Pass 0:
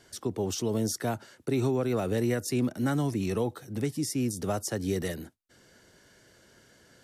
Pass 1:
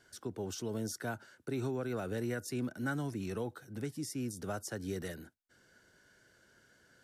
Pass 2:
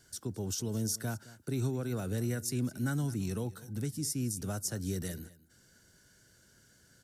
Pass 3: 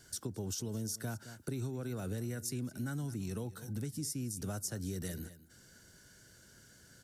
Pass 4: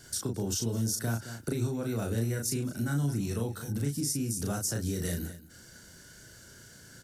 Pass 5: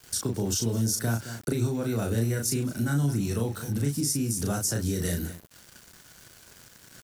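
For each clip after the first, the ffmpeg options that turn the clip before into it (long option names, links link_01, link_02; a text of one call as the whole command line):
ffmpeg -i in.wav -af "equalizer=frequency=1500:width_type=o:width=0.22:gain=11,volume=-9dB" out.wav
ffmpeg -i in.wav -af "bass=frequency=250:gain=11,treble=frequency=4000:gain=13,aecho=1:1:215:0.112,volume=-3dB" out.wav
ffmpeg -i in.wav -af "acompressor=threshold=-40dB:ratio=4,volume=3.5dB" out.wav
ffmpeg -i in.wav -filter_complex "[0:a]asplit=2[link_01][link_02];[link_02]adelay=35,volume=-3dB[link_03];[link_01][link_03]amix=inputs=2:normalize=0,volume=6dB" out.wav
ffmpeg -i in.wav -af "aeval=exprs='val(0)*gte(abs(val(0)),0.00422)':channel_layout=same,volume=4dB" out.wav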